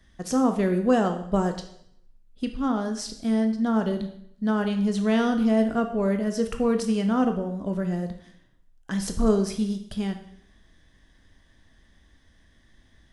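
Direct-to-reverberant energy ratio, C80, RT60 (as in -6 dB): 6.0 dB, 12.5 dB, 0.65 s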